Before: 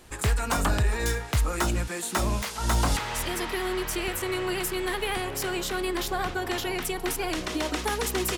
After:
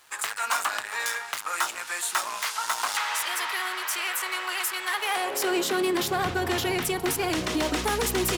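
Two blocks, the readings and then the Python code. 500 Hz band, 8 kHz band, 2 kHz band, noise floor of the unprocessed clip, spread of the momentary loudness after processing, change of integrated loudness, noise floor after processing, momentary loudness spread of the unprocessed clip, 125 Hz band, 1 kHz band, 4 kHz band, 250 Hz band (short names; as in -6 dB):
0.0 dB, +2.5 dB, +3.5 dB, -36 dBFS, 4 LU, +1.0 dB, -38 dBFS, 4 LU, -9.0 dB, +2.5 dB, +3.0 dB, 0.0 dB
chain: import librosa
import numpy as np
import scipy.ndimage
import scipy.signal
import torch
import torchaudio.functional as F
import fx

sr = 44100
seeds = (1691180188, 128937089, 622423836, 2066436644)

p1 = 10.0 ** (-26.5 / 20.0) * (np.abs((x / 10.0 ** (-26.5 / 20.0) + 3.0) % 4.0 - 2.0) - 1.0)
p2 = x + F.gain(torch.from_numpy(p1), -4.0).numpy()
p3 = fx.filter_sweep_highpass(p2, sr, from_hz=1100.0, to_hz=85.0, start_s=4.9, end_s=6.34, q=1.3)
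y = np.sign(p3) * np.maximum(np.abs(p3) - 10.0 ** (-54.0 / 20.0), 0.0)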